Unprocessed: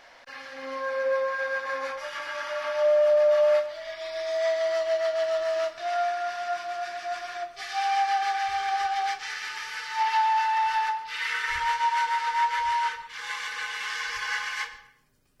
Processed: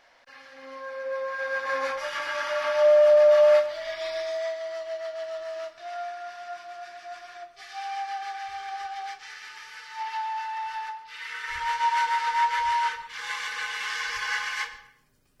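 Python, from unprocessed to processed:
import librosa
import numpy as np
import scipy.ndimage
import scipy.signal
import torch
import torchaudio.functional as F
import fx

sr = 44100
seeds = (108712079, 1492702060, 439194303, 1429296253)

y = fx.gain(x, sr, db=fx.line((1.04, -7.0), (1.77, 3.5), (4.09, 3.5), (4.59, -8.0), (11.29, -8.0), (11.88, 1.0)))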